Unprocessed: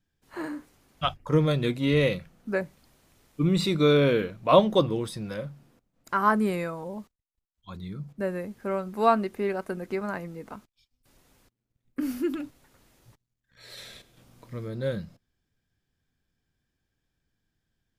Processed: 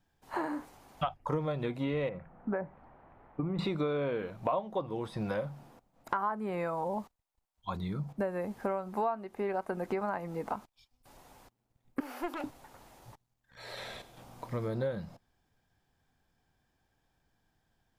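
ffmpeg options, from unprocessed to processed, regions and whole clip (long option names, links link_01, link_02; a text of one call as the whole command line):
ffmpeg -i in.wav -filter_complex "[0:a]asettb=1/sr,asplit=3[link_01][link_02][link_03];[link_01]atrim=end=2.094[link_04];[link_02]atrim=start=2.09:end=3.59,asetpts=PTS-STARTPTS,afade=type=in:duration=0.004:curve=qsin,afade=type=out:start_time=1.496:duration=0.004:curve=qsin,lowpass=frequency=1900:width=0.5412,lowpass=frequency=1900:width=1.3066,acompressor=threshold=-28dB:ratio=6:attack=3.2:release=140:knee=1:detection=peak[link_05];[link_03]atrim=start=3.586[link_06];[link_04][link_05]acrossfade=duration=0.004:curve1=hsin:curve2=qsin[link_07];[link_07][link_06]acrossfade=duration=0.004:curve1=qsin:curve2=hsin,asettb=1/sr,asplit=3[link_08][link_09][link_10];[link_08]atrim=end=12.004[link_11];[link_09]atrim=start=12:end=12.44,asetpts=PTS-STARTPTS,afade=type=in:duration=0.004:curve=qsin,afade=type=out:start_time=0.436:duration=0.004:curve=qsin,highpass=frequency=440:width=0.5412,highpass=frequency=440:width=1.3066,aeval=exprs='clip(val(0),-1,0.00891)':channel_layout=same[link_12];[link_10]atrim=start=12.436[link_13];[link_11][link_12]acrossfade=duration=0.004:curve1=hsin:curve2=qsin[link_14];[link_14][link_13]acrossfade=duration=0.004:curve1=qsin:curve2=hsin,acrossover=split=3300[link_15][link_16];[link_16]acompressor=threshold=-54dB:ratio=4:attack=1:release=60[link_17];[link_15][link_17]amix=inputs=2:normalize=0,equalizer=frequency=820:width_type=o:width=1:gain=12.5,acompressor=threshold=-32dB:ratio=8,volume=2dB" out.wav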